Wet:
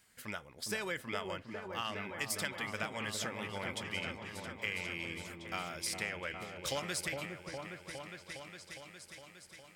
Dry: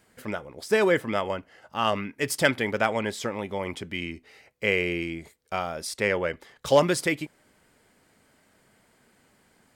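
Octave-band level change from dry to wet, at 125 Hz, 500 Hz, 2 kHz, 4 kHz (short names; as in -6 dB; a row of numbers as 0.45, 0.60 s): -11.0, -17.0, -9.5, -6.5 dB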